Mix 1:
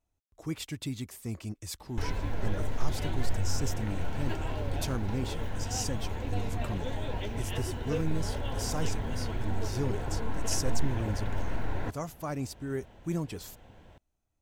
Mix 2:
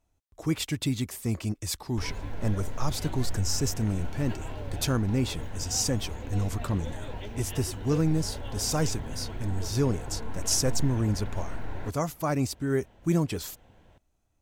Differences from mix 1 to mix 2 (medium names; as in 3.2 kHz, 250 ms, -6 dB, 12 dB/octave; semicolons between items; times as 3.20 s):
speech +7.5 dB; background -3.5 dB